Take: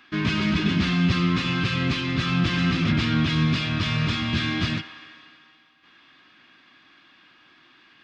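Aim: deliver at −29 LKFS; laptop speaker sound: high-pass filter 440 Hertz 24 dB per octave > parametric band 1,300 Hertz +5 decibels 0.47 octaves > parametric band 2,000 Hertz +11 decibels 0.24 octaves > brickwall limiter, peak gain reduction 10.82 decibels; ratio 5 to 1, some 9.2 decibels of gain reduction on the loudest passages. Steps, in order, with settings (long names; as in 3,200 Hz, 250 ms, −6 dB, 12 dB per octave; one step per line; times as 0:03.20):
downward compressor 5 to 1, threshold −28 dBFS
high-pass filter 440 Hz 24 dB per octave
parametric band 1,300 Hz +5 dB 0.47 octaves
parametric band 2,000 Hz +11 dB 0.24 octaves
level +10.5 dB
brickwall limiter −21.5 dBFS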